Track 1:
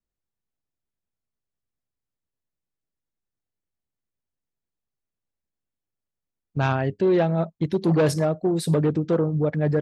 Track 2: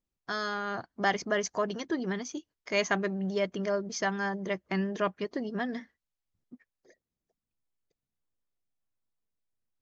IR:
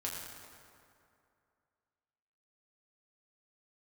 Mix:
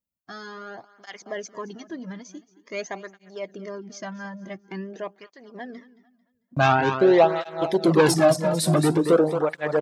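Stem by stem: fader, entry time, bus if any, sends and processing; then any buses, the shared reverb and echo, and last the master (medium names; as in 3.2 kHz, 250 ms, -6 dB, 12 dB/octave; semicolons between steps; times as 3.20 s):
0.0 dB, 0.00 s, no send, echo send -7 dB, de-esser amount 50%; gate -33 dBFS, range -23 dB; peaking EQ 900 Hz +8.5 dB 2.2 oct
-1.5 dB, 0.00 s, no send, echo send -18 dB, peaking EQ 5.1 kHz -11.5 dB 3 oct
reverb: none
echo: feedback delay 223 ms, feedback 33%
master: treble shelf 2.4 kHz +12 dB; cancelling through-zero flanger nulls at 0.47 Hz, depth 2.8 ms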